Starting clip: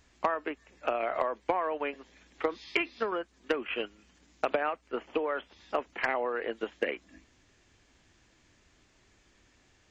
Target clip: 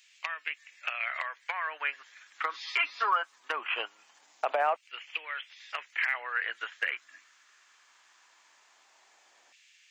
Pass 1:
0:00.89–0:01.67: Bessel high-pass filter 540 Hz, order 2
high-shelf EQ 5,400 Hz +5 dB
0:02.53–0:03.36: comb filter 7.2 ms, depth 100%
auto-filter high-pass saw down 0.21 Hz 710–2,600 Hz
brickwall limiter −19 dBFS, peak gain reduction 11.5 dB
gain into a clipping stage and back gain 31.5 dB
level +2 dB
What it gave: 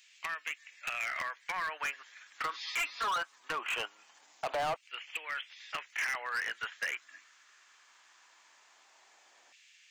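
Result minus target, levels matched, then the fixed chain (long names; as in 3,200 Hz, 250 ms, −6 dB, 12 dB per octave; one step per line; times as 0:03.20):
gain into a clipping stage and back: distortion +36 dB
0:00.89–0:01.67: Bessel high-pass filter 540 Hz, order 2
high-shelf EQ 5,400 Hz +5 dB
0:02.53–0:03.36: comb filter 7.2 ms, depth 100%
auto-filter high-pass saw down 0.21 Hz 710–2,600 Hz
brickwall limiter −19 dBFS, peak gain reduction 11.5 dB
gain into a clipping stage and back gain 19.5 dB
level +2 dB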